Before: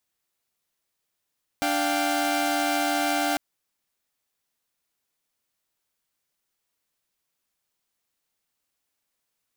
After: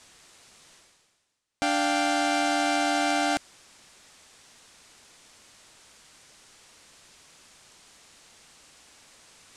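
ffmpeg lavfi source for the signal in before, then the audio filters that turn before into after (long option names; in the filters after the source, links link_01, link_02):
-f lavfi -i "aevalsrc='0.0596*((2*mod(293.66*t,1)-1)+(2*mod(698.46*t,1)-1)+(2*mod(783.99*t,1)-1))':duration=1.75:sample_rate=44100"
-af "lowpass=frequency=8900:width=0.5412,lowpass=frequency=8900:width=1.3066,areverse,acompressor=mode=upward:threshold=-32dB:ratio=2.5,areverse"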